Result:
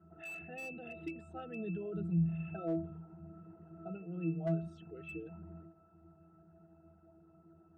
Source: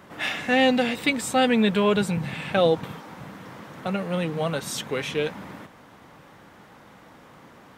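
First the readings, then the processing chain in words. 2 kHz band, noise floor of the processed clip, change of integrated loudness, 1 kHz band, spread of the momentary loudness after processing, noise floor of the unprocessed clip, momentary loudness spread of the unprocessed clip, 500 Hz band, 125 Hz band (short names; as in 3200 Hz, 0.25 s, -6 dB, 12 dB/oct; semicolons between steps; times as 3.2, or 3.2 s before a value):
-21.5 dB, -64 dBFS, -16.0 dB, -23.5 dB, 18 LU, -50 dBFS, 21 LU, -19.5 dB, -6.5 dB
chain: formant sharpening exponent 2; octave resonator E, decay 0.37 s; slew limiter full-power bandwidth 13 Hz; gain +2.5 dB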